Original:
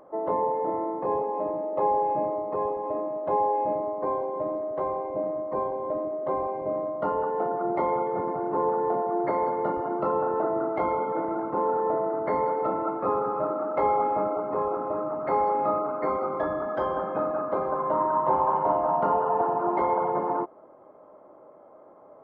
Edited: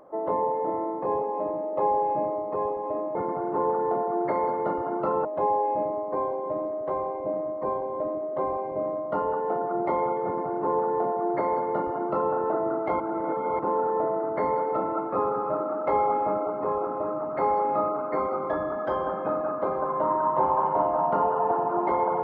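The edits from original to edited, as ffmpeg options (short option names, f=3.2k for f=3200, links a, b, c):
-filter_complex "[0:a]asplit=5[a][b][c][d][e];[a]atrim=end=3.152[f];[b]atrim=start=8.138:end=10.242[g];[c]atrim=start=3.148:end=10.902[h];[d]atrim=start=10.898:end=11.492,asetpts=PTS-STARTPTS,areverse[i];[e]atrim=start=11.488[j];[f][g]acrossfade=d=0.004:c1=hsin:c2=hsin[k];[k][h]acrossfade=d=0.004:c1=hsin:c2=hsin[l];[l][i]acrossfade=d=0.004:c1=hsin:c2=hsin[m];[m][j]acrossfade=d=0.004:c1=hsin:c2=hsin"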